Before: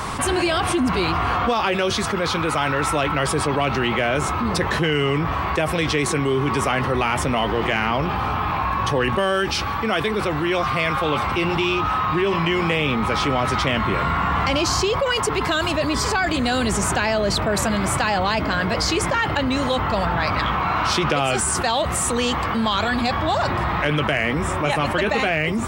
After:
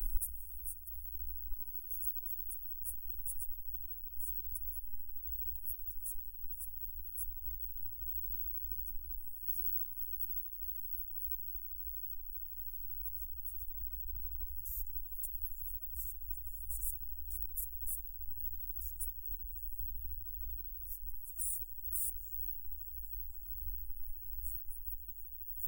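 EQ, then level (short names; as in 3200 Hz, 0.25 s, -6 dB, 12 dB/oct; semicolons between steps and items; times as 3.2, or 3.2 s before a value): inverse Chebyshev band-stop 130–4500 Hz, stop band 80 dB; +17.5 dB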